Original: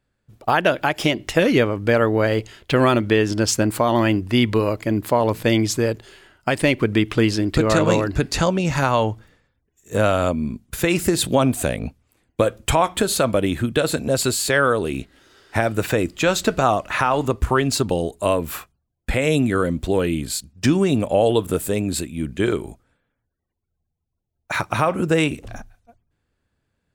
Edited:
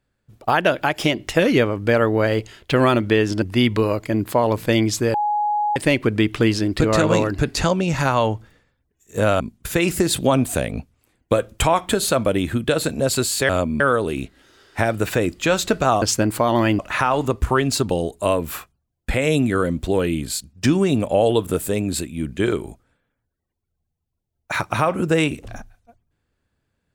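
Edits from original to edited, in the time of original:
3.42–4.19 move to 16.79
5.91–6.53 bleep 835 Hz -17.5 dBFS
10.17–10.48 move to 14.57

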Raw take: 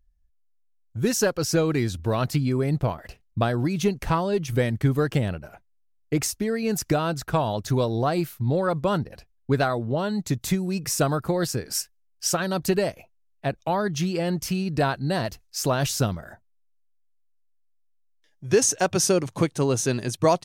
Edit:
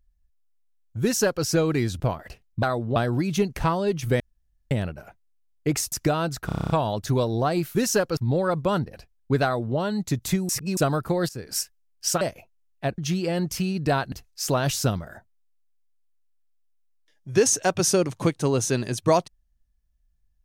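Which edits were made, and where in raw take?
1.02–1.44 copy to 8.36
2–2.79 cut
4.66–5.17 room tone
6.38–6.77 cut
7.31 stutter 0.03 s, 9 plays
9.63–9.96 copy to 3.42
10.68–10.96 reverse
11.48–11.75 fade in, from -16.5 dB
12.4–12.82 cut
13.59–13.89 cut
15.03–15.28 cut

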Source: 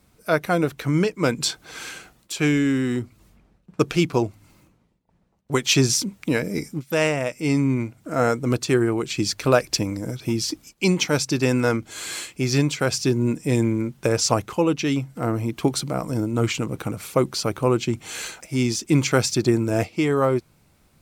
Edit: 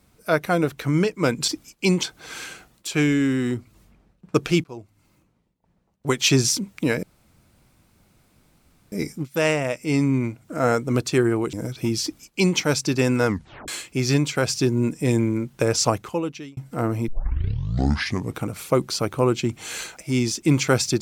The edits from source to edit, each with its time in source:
4.09–5.84 fade in equal-power, from -23.5 dB
6.48 insert room tone 1.89 s
9.09–9.97 cut
10.47–11.02 copy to 1.48
11.72 tape stop 0.40 s
14.31–15.01 fade out
15.52 tape start 1.32 s

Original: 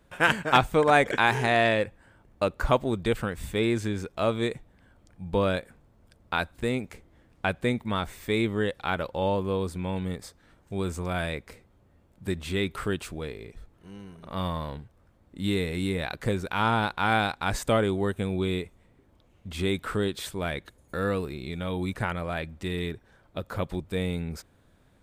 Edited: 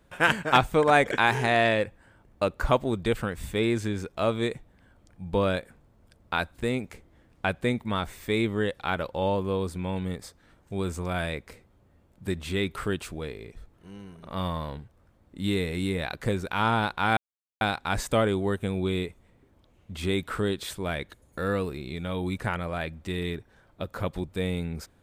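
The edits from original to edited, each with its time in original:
17.17 insert silence 0.44 s

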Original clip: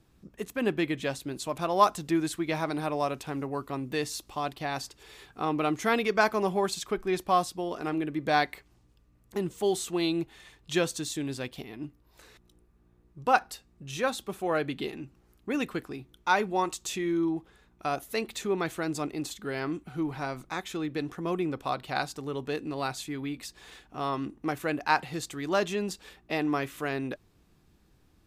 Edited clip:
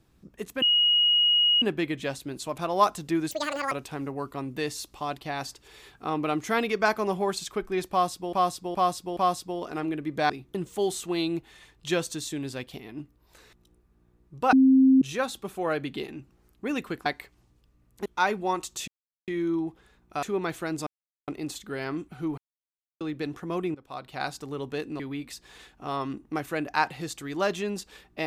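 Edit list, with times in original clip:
0.62 add tone 2890 Hz -18 dBFS 1.00 s
2.31–3.07 speed 187%
7.26–7.68 loop, 4 plays
8.39–9.39 swap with 15.9–16.15
13.37–13.86 bleep 264 Hz -14 dBFS
16.97 insert silence 0.40 s
17.92–18.39 cut
19.03 insert silence 0.41 s
20.13–20.76 mute
21.5–22.1 fade in, from -19.5 dB
22.75–23.12 cut

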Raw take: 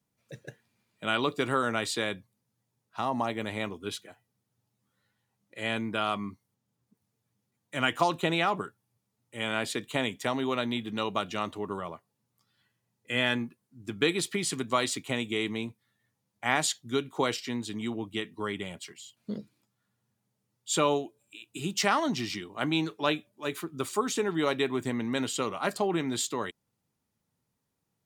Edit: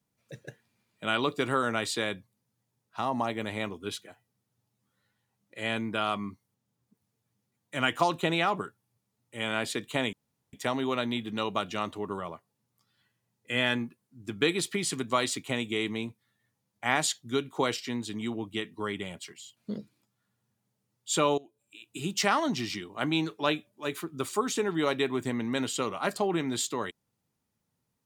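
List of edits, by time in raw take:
10.13 insert room tone 0.40 s
20.98–21.54 fade in, from -19.5 dB

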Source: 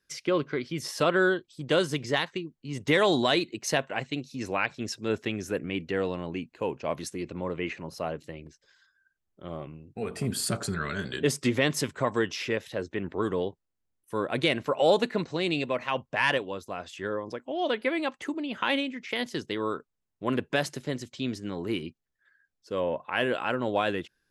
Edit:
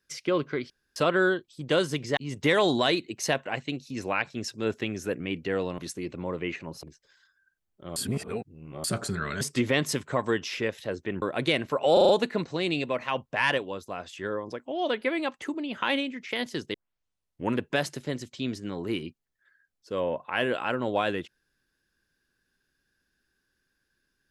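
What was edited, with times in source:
0.7–0.96 room tone
2.17–2.61 cut
6.22–6.95 cut
8–8.42 cut
9.55–10.43 reverse
11–11.29 cut
13.1–14.18 cut
14.89 stutter 0.04 s, 5 plays
19.54 tape start 0.83 s

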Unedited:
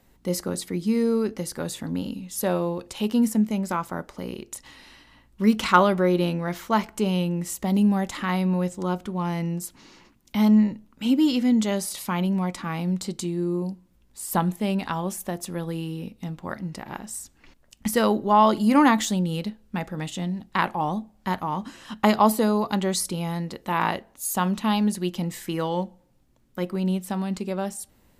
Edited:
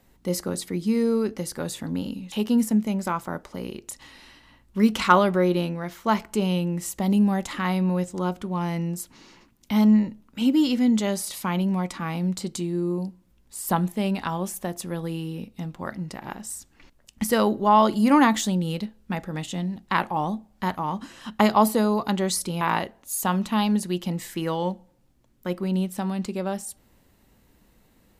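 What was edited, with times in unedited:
2.32–2.96 cut
6.09–6.68 fade out, to -6.5 dB
23.25–23.73 cut

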